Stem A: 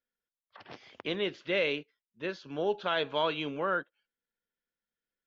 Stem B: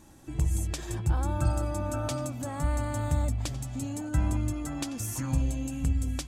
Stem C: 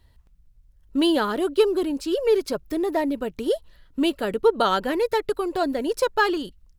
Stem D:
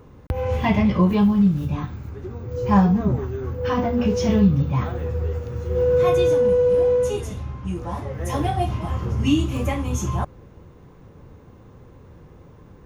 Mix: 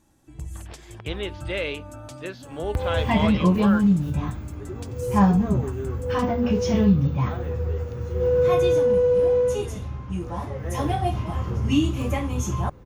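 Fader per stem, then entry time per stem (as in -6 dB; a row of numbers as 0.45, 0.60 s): +0.5 dB, -8.5 dB, off, -1.5 dB; 0.00 s, 0.00 s, off, 2.45 s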